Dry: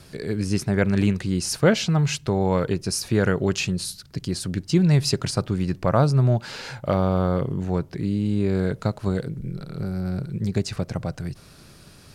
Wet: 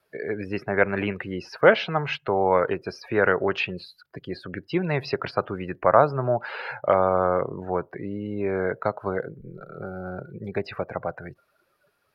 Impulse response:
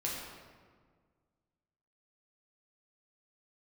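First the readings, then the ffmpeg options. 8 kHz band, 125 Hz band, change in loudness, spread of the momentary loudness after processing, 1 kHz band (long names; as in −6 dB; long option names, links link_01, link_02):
below −25 dB, −11.5 dB, −1.5 dB, 17 LU, +6.0 dB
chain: -filter_complex "[0:a]acrossover=split=430 2800:gain=0.112 1 0.2[link_01][link_02][link_03];[link_01][link_02][link_03]amix=inputs=3:normalize=0,acrossover=split=4500[link_04][link_05];[link_05]acompressor=threshold=-54dB:ratio=4:attack=1:release=60[link_06];[link_04][link_06]amix=inputs=2:normalize=0,afftdn=noise_reduction=23:noise_floor=-45,aexciter=amount=6.3:drive=3.8:freq=11000,volume=6.5dB"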